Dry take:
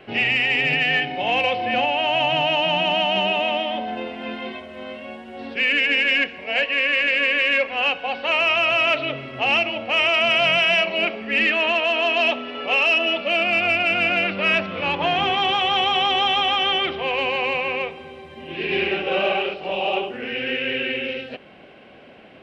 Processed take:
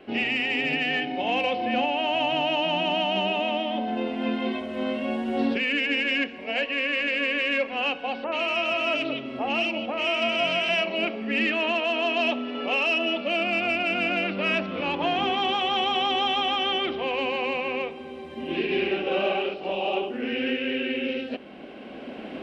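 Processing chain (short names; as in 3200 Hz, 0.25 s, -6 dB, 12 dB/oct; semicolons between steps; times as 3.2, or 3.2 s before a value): recorder AGC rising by 8.3 dB/s; ten-band EQ 125 Hz -10 dB, 250 Hz +10 dB, 2000 Hz -3 dB; 8.24–10.69 bands offset in time lows, highs 80 ms, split 1800 Hz; gain -4.5 dB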